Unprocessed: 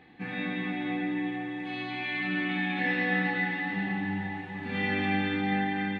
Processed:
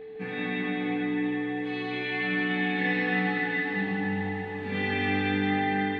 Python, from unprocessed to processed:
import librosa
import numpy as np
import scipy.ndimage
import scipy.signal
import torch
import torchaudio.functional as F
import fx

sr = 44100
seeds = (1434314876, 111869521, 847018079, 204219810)

y = x + 10.0 ** (-39.0 / 20.0) * np.sin(2.0 * np.pi * 440.0 * np.arange(len(x)) / sr)
y = y + 10.0 ** (-4.0 / 20.0) * np.pad(y, (int(155 * sr / 1000.0), 0))[:len(y)]